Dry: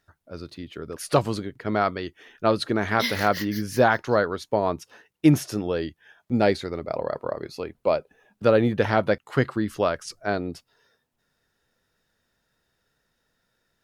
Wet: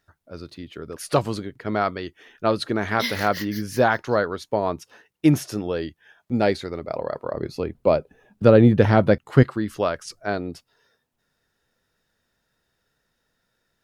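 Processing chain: 7.34–9.43 low shelf 400 Hz +11 dB

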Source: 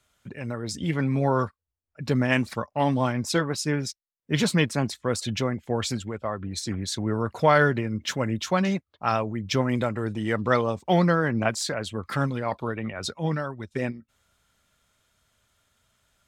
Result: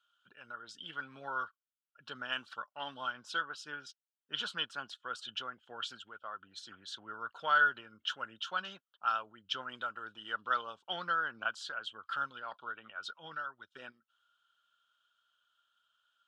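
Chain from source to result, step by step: double band-pass 2100 Hz, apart 1.1 oct

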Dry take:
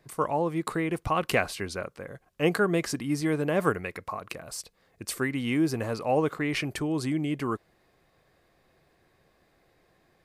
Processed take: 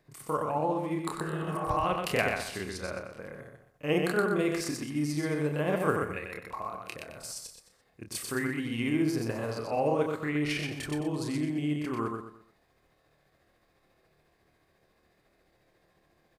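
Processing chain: spectral repair 0.8–1.07, 310–2500 Hz both; feedback echo 68 ms, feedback 34%, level -4 dB; granular stretch 1.6×, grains 0.142 s; gain -3 dB

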